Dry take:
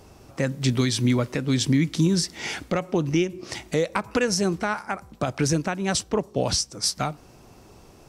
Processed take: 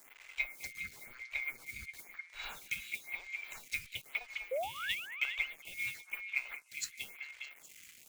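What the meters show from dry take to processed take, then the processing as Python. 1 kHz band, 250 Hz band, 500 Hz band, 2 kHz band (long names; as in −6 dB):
−18.0 dB, below −40 dB, −21.0 dB, −4.5 dB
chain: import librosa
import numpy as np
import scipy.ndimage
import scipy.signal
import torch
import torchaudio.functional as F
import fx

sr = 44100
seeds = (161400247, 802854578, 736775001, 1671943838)

p1 = fx.band_swap(x, sr, width_hz=2000)
p2 = fx.env_lowpass_down(p1, sr, base_hz=450.0, full_db=-17.5)
p3 = fx.tone_stack(p2, sr, knobs='10-0-10')
p4 = fx.mod_noise(p3, sr, seeds[0], snr_db=16)
p5 = fx.spec_paint(p4, sr, seeds[1], shape='rise', start_s=4.51, length_s=0.55, low_hz=490.0, high_hz=3100.0, level_db=-32.0)
p6 = fx.quant_dither(p5, sr, seeds[2], bits=8, dither='none')
p7 = p6 + fx.echo_stepped(p6, sr, ms=204, hz=1700.0, octaves=0.7, feedback_pct=70, wet_db=-6, dry=0)
p8 = fx.stagger_phaser(p7, sr, hz=0.99)
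y = p8 * librosa.db_to_amplitude(-1.5)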